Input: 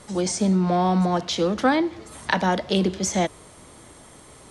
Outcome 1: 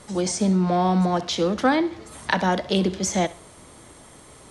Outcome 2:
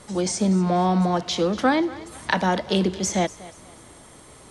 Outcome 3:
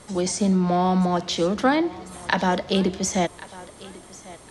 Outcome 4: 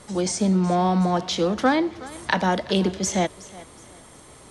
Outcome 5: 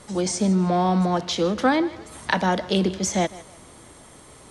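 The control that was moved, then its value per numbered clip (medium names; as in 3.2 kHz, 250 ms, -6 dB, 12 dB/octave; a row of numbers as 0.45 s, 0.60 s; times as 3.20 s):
thinning echo, time: 66 ms, 241 ms, 1095 ms, 370 ms, 155 ms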